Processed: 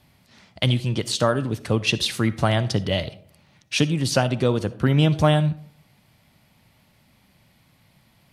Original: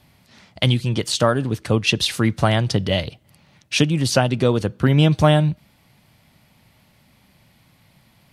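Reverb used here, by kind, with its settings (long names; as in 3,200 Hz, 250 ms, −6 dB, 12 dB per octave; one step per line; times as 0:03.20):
comb and all-pass reverb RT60 0.61 s, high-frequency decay 0.4×, pre-delay 20 ms, DRR 15.5 dB
level −3 dB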